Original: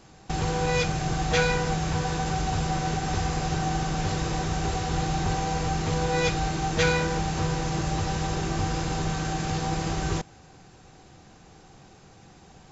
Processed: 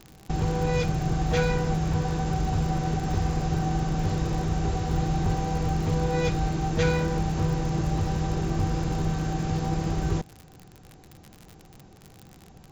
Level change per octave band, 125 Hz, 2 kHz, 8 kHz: +2.5 dB, -6.0 dB, no reading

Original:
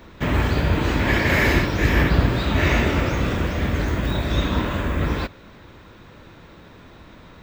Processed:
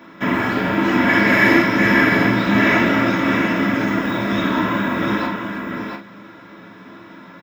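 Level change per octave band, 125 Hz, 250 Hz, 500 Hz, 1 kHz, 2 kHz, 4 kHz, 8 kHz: -5.0 dB, +7.5 dB, +3.5 dB, +7.0 dB, +7.5 dB, +1.5 dB, no reading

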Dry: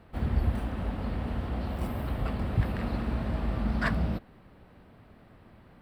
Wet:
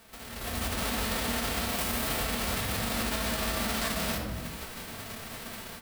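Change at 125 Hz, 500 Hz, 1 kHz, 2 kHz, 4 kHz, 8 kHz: -7.5 dB, +3.0 dB, +4.5 dB, +5.5 dB, +16.0 dB, no reading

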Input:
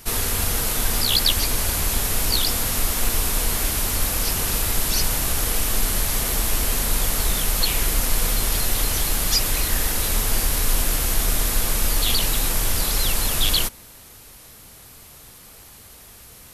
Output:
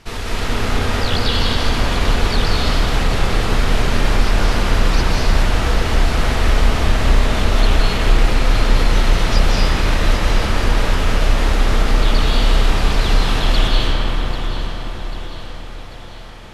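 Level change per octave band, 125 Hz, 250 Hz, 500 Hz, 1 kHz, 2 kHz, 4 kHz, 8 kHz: +9.5 dB, +10.0 dB, +9.5 dB, +9.0 dB, +7.0 dB, +1.5 dB, -10.5 dB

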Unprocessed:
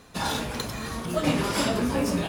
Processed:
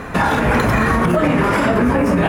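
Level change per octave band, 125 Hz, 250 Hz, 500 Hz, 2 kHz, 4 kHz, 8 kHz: +12.5 dB, +11.0 dB, +11.5 dB, +14.5 dB, +0.5 dB, -1.0 dB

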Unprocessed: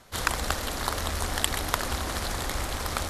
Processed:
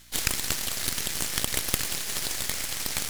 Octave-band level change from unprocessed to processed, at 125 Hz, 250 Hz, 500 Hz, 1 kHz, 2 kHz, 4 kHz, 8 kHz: -6.5 dB, -3.0 dB, -6.5 dB, -9.5 dB, -2.0 dB, +2.0 dB, +5.5 dB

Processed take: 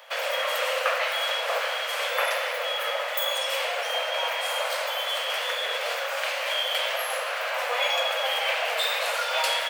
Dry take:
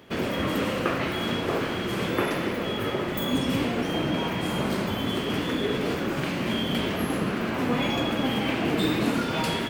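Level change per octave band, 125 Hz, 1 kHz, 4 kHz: under -40 dB, +2.5 dB, +5.5 dB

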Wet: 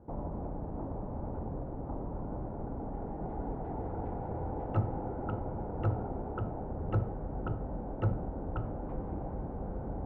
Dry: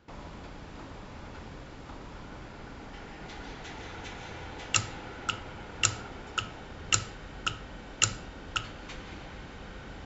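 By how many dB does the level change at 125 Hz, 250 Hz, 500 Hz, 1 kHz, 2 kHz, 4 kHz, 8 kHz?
+7.5 dB, +7.0 dB, +7.0 dB, -0.5 dB, -19.0 dB, under -30 dB, no reading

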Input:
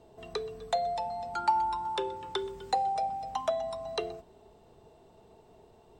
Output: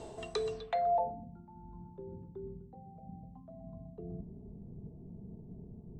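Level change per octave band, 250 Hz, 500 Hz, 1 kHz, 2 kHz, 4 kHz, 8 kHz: +1.0 dB, -3.5 dB, -9.0 dB, -8.0 dB, under -10 dB, no reading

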